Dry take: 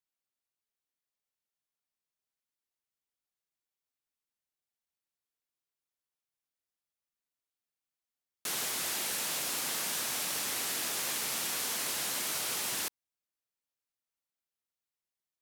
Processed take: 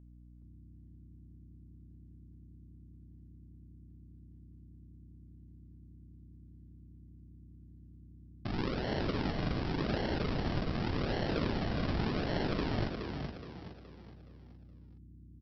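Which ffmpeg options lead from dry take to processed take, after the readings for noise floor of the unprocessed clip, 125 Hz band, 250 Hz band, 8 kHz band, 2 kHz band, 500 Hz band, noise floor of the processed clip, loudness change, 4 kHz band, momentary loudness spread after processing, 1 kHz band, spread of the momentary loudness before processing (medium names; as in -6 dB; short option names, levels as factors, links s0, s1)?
under -85 dBFS, +22.0 dB, +15.5 dB, under -30 dB, -3.0 dB, +9.5 dB, -56 dBFS, -3.5 dB, -8.0 dB, 15 LU, +2.0 dB, 2 LU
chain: -filter_complex "[0:a]acontrast=86,aresample=11025,acrusher=samples=17:mix=1:aa=0.000001:lfo=1:lforange=17:lforate=0.87,aresample=44100,aeval=exprs='val(0)+0.00282*(sin(2*PI*60*n/s)+sin(2*PI*2*60*n/s)/2+sin(2*PI*3*60*n/s)/3+sin(2*PI*4*60*n/s)/4+sin(2*PI*5*60*n/s)/5)':c=same,asplit=6[s0][s1][s2][s3][s4][s5];[s1]adelay=420,afreqshift=35,volume=0.501[s6];[s2]adelay=840,afreqshift=70,volume=0.2[s7];[s3]adelay=1260,afreqshift=105,volume=0.0804[s8];[s4]adelay=1680,afreqshift=140,volume=0.032[s9];[s5]adelay=2100,afreqshift=175,volume=0.0129[s10];[s0][s6][s7][s8][s9][s10]amix=inputs=6:normalize=0,volume=0.75"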